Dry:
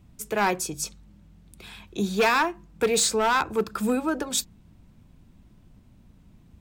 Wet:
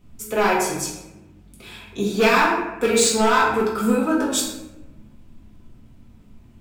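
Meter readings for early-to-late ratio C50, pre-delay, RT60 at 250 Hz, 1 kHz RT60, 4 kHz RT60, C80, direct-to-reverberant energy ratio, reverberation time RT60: 2.0 dB, 4 ms, 1.3 s, 0.90 s, 0.60 s, 5.0 dB, -5.5 dB, 1.0 s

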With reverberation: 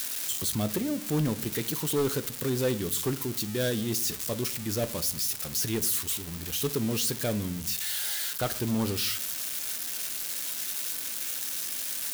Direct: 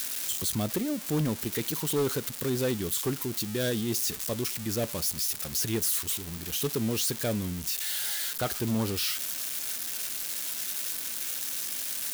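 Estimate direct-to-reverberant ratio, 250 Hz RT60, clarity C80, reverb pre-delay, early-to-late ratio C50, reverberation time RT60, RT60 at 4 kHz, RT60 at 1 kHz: 12.0 dB, 0.75 s, 23.0 dB, 7 ms, 19.0 dB, 0.50 s, 0.35 s, 0.45 s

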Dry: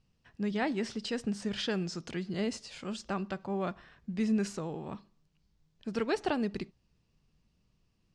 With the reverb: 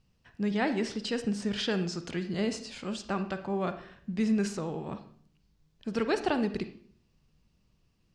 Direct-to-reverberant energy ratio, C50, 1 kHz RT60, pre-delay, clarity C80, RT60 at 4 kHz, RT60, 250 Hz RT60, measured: 9.5 dB, 11.0 dB, 0.50 s, 39 ms, 15.0 dB, 0.45 s, 0.55 s, 0.75 s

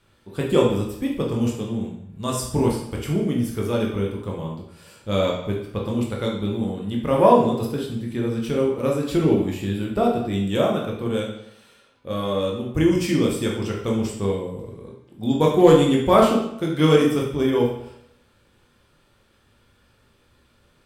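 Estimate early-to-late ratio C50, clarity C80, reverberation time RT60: 4.0 dB, 7.5 dB, 0.75 s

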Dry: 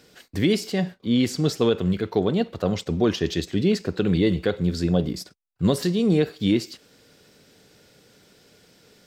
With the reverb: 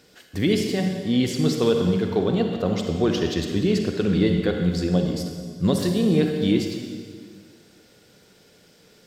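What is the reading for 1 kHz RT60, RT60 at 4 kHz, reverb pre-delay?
1.6 s, 1.7 s, 36 ms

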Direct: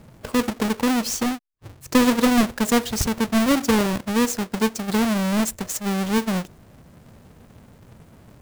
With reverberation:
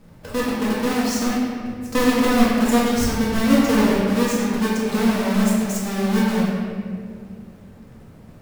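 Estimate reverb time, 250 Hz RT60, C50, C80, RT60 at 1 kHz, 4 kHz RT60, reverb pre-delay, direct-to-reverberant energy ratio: 2.2 s, 3.2 s, -2.0 dB, 0.0 dB, 1.8 s, 1.3 s, 4 ms, -7.5 dB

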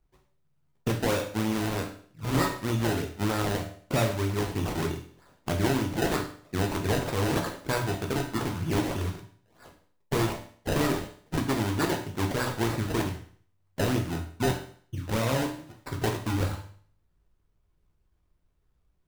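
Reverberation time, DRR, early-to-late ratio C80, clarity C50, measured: 0.55 s, 1.5 dB, 12.5 dB, 8.5 dB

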